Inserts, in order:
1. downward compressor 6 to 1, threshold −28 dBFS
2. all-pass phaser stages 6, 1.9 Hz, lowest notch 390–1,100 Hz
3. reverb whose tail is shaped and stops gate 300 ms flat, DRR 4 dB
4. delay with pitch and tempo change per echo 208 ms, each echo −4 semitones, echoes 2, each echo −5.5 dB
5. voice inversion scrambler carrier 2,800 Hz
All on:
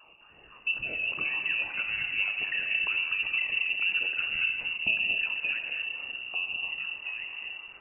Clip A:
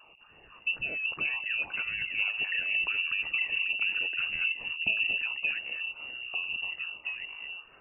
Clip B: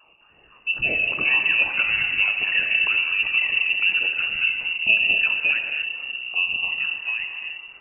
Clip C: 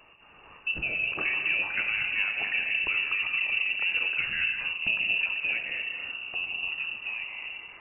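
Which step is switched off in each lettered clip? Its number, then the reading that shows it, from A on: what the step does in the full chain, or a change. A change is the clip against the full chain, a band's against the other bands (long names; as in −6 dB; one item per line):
3, change in integrated loudness −1.5 LU
1, average gain reduction 7.0 dB
2, change in integrated loudness +1.0 LU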